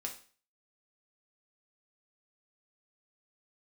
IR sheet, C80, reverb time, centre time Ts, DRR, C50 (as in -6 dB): 15.0 dB, 0.40 s, 17 ms, 0.5 dB, 10.0 dB